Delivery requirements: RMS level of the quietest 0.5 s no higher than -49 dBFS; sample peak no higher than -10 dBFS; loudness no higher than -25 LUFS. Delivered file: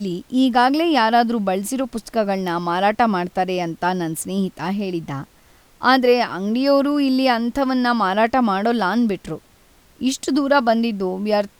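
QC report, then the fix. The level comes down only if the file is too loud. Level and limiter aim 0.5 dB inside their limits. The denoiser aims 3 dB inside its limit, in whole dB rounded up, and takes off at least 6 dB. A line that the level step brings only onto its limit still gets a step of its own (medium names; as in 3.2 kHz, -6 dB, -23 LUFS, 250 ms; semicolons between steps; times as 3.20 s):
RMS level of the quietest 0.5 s -53 dBFS: pass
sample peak -3.0 dBFS: fail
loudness -19.5 LUFS: fail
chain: trim -6 dB; peak limiter -10.5 dBFS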